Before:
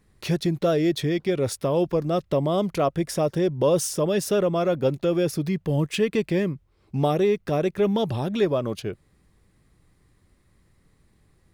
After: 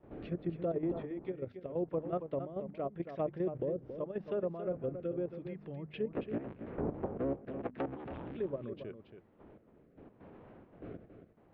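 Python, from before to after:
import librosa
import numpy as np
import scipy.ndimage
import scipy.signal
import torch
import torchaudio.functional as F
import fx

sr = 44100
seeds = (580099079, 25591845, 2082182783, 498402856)

y = fx.cycle_switch(x, sr, every=3, mode='inverted', at=(6.11, 8.37))
y = fx.dmg_wind(y, sr, seeds[0], corner_hz=420.0, level_db=-34.0)
y = fx.hum_notches(y, sr, base_hz=50, count=5)
y = fx.env_lowpass_down(y, sr, base_hz=750.0, full_db=-17.0)
y = scipy.signal.sosfilt(scipy.signal.butter(4, 3100.0, 'lowpass', fs=sr, output='sos'), y)
y = fx.low_shelf(y, sr, hz=64.0, db=-11.0)
y = fx.level_steps(y, sr, step_db=11)
y = fx.rotary(y, sr, hz=0.85)
y = y + 10.0 ** (-9.5 / 20.0) * np.pad(y, (int(276 * sr / 1000.0), 0))[:len(y)]
y = y * 10.0 ** (-9.0 / 20.0)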